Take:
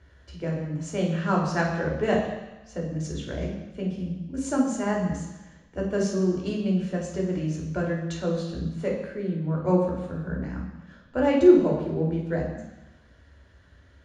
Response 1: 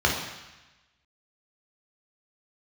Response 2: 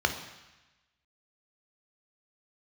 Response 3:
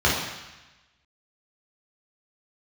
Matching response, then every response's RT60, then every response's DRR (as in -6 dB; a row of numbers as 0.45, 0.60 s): 1; 1.0, 1.0, 1.0 s; -1.5, 5.5, -6.0 dB